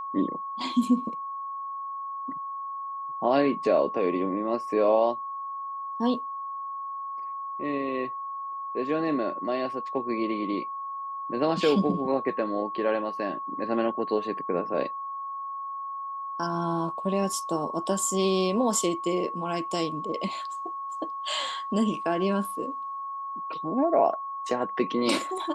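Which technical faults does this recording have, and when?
tone 1100 Hz -32 dBFS

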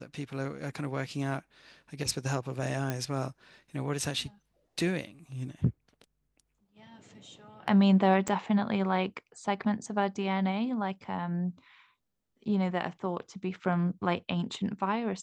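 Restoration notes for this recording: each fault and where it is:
2.9 pop -17 dBFS
8.28 pop -18 dBFS

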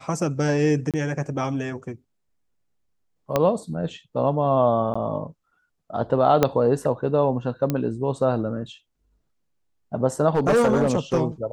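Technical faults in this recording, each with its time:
0.91–0.94 gap 27 ms
3.36 pop -7 dBFS
4.94–4.96 gap 15 ms
6.43 pop -4 dBFS
7.7 pop -10 dBFS
10.3–11.21 clipped -14 dBFS

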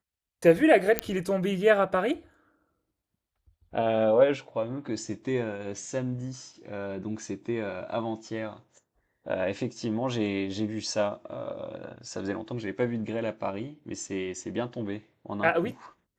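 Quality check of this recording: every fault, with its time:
0.99 pop -7 dBFS

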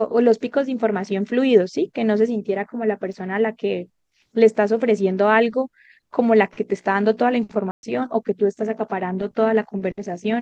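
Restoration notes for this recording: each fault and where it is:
3.13 gap 2.8 ms
7.71–7.83 gap 0.121 s

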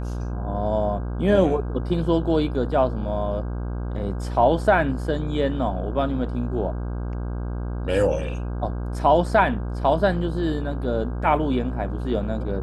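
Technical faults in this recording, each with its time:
buzz 60 Hz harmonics 27 -28 dBFS

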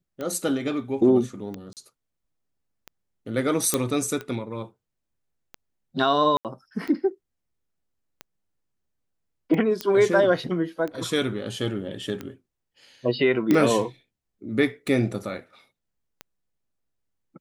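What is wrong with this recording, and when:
tick 45 rpm -20 dBFS
1.73–1.77 gap 38 ms
3.74 pop -6 dBFS
6.37–6.45 gap 78 ms
9.81 pop -12 dBFS
13.51 pop -9 dBFS

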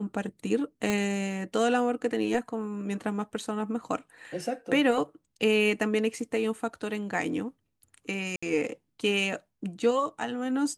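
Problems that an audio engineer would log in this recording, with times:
0.9 pop -13 dBFS
8.36–8.43 gap 65 ms

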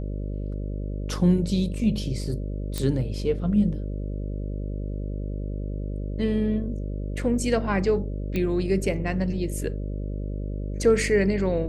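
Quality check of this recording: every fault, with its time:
buzz 50 Hz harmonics 12 -30 dBFS
2.78 pop -14 dBFS
8.36 pop -15 dBFS

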